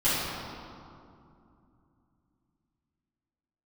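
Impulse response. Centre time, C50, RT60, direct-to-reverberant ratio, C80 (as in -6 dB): 157 ms, -3.5 dB, 2.6 s, -14.5 dB, -1.0 dB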